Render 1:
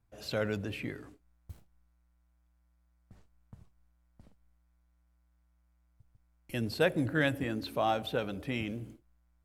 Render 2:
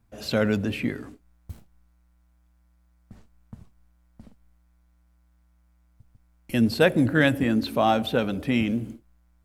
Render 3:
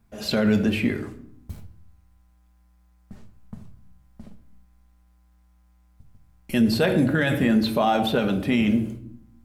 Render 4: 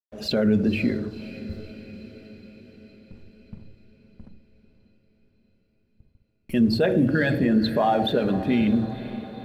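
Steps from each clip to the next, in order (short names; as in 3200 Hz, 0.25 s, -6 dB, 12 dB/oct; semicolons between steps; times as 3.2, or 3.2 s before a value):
bell 230 Hz +8.5 dB 0.34 oct; gain +8 dB
on a send at -5.5 dB: reverb RT60 0.70 s, pre-delay 5 ms; on the sum: limiter -14 dBFS, peak gain reduction 9.5 dB; gain +3 dB
formant sharpening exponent 1.5; crossover distortion -51 dBFS; diffused feedback echo 0.521 s, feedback 61%, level -14.5 dB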